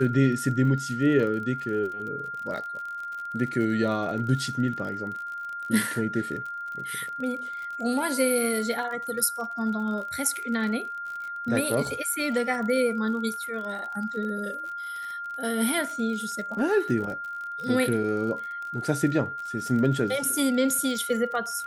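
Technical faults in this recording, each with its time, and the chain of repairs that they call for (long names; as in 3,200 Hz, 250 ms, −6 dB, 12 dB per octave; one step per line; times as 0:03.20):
surface crackle 41 per second −34 dBFS
whistle 1,400 Hz −32 dBFS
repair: click removal
notch filter 1,400 Hz, Q 30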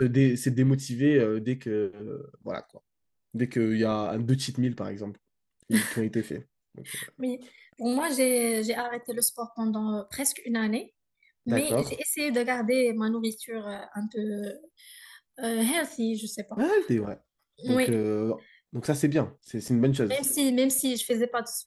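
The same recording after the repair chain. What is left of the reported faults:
none of them is left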